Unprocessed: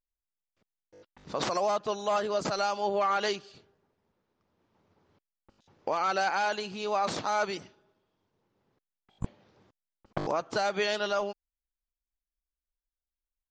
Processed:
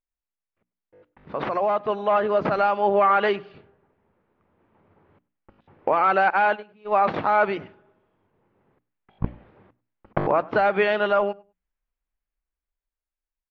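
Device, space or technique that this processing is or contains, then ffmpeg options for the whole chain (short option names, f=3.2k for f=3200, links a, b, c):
action camera in a waterproof case: -filter_complex "[0:a]bandreject=f=60:t=h:w=6,bandreject=f=120:t=h:w=6,bandreject=f=180:t=h:w=6,bandreject=f=240:t=h:w=6,bandreject=f=300:t=h:w=6,asettb=1/sr,asplit=3[a][b][c];[a]atrim=end=6.304[d];[b]atrim=start=6.3:end=7.14,asetpts=PTS-STARTPTS,afade=t=in:d=0.004:c=qsin,afade=t=out:st=0.836:d=0.004:c=qsin,agate=range=-25dB:threshold=-30dB:ratio=16:detection=peak[e];[c]atrim=start=7.136[f];[d][e]acrossfade=d=0.004:c1=hsin:c2=qsin[g];[g][f]acrossfade=d=0.004:c1=qsin:c2=hsin,lowpass=f=2.5k:w=0.5412,lowpass=f=2.5k:w=1.3066,asplit=2[h][i];[i]adelay=100,lowpass=f=2.3k:p=1,volume=-23dB,asplit=2[j][k];[k]adelay=100,lowpass=f=2.3k:p=1,volume=0.18[l];[h][j][l]amix=inputs=3:normalize=0,dynaudnorm=f=490:g=7:m=9dB" -ar 16000 -c:a aac -b:a 64k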